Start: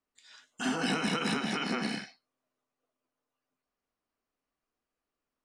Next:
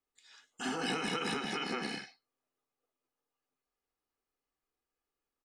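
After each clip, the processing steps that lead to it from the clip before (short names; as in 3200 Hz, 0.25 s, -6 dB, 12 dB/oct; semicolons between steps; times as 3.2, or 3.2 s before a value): comb 2.4 ms, depth 41%; gain -4 dB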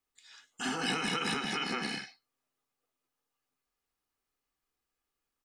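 bell 460 Hz -5.5 dB 1.7 oct; gain +4 dB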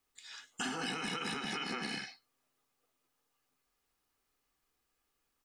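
compressor 10:1, threshold -40 dBFS, peak gain reduction 12.5 dB; gain +5.5 dB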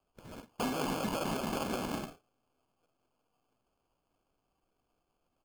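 LPF 3600 Hz 12 dB/oct; sample-and-hold 23×; gain +4.5 dB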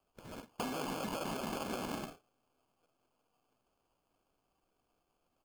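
low shelf 210 Hz -3.5 dB; compressor, threshold -36 dBFS, peak gain reduction 6.5 dB; gain +1 dB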